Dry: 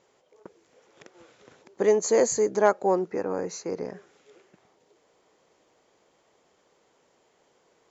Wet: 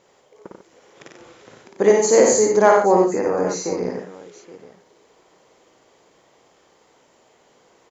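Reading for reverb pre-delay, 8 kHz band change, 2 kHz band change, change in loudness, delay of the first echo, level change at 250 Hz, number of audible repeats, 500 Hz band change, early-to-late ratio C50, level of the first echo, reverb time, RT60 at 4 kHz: no reverb, no reading, +9.0 dB, +8.0 dB, 55 ms, +9.0 dB, 4, +8.0 dB, no reverb, -2.5 dB, no reverb, no reverb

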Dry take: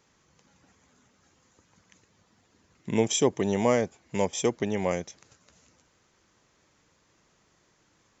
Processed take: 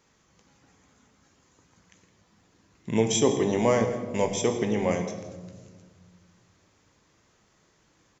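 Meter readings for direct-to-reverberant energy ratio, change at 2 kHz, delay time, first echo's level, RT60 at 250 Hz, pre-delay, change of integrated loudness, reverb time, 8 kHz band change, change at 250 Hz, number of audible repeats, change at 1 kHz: 4.5 dB, +1.0 dB, 163 ms, -15.5 dB, 2.5 s, 18 ms, +1.5 dB, 1.5 s, no reading, +2.0 dB, 1, +1.5 dB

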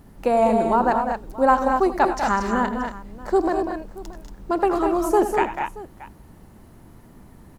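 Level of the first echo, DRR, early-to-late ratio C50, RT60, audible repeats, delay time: -13.5 dB, no reverb, no reverb, no reverb, 4, 81 ms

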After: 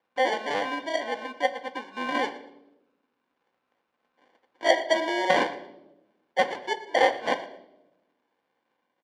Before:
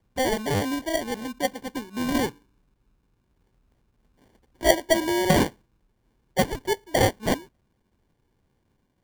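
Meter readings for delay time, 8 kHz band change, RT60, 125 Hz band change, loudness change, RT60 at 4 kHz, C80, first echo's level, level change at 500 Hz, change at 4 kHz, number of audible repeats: 116 ms, -11.5 dB, 0.95 s, -22.0 dB, -1.5 dB, 0.65 s, 15.0 dB, -19.5 dB, -1.5 dB, -1.5 dB, 2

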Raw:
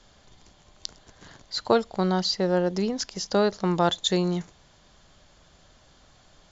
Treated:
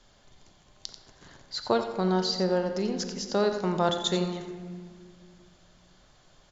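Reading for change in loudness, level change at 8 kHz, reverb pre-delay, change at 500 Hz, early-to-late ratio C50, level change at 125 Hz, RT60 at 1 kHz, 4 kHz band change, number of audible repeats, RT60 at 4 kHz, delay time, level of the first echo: -3.0 dB, no reading, 3 ms, -2.5 dB, 6.0 dB, -3.5 dB, 1.7 s, -3.0 dB, 1, 1.2 s, 89 ms, -10.5 dB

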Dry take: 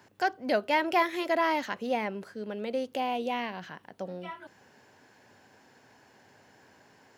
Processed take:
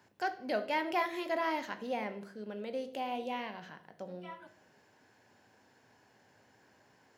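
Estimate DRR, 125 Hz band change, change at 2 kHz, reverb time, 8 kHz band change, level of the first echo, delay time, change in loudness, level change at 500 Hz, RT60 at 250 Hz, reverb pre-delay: 9.0 dB, -6.0 dB, -6.5 dB, 0.60 s, -6.5 dB, no echo, no echo, -6.5 dB, -6.0 dB, 0.85 s, 17 ms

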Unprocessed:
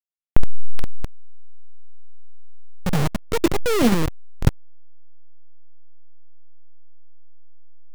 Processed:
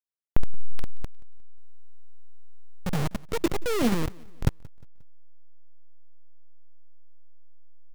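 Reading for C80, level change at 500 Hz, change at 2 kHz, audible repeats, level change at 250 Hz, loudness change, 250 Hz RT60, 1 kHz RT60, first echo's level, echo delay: no reverb, -6.5 dB, -6.5 dB, 2, -6.5 dB, -6.5 dB, no reverb, no reverb, -24.0 dB, 178 ms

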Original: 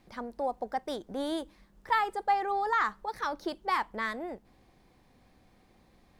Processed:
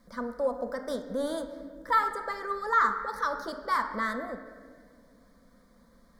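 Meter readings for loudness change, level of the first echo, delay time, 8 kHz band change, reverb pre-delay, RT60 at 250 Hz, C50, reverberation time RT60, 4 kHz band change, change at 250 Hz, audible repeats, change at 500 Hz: +2.0 dB, no echo, no echo, no reading, 6 ms, 2.4 s, 8.5 dB, 1.8 s, -2.0 dB, +1.0 dB, no echo, +3.5 dB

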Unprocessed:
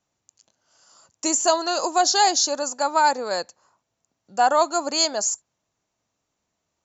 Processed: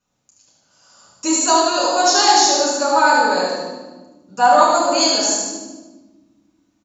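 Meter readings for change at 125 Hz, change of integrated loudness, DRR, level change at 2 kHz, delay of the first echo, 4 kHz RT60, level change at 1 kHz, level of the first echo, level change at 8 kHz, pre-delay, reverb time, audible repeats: no reading, +6.0 dB, -7.0 dB, +8.5 dB, 75 ms, 1.0 s, +6.5 dB, -3.5 dB, no reading, 5 ms, 1.4 s, 1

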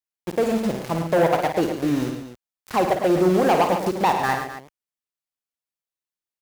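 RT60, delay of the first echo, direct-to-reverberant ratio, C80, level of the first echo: no reverb, 54 ms, no reverb, no reverb, -8.0 dB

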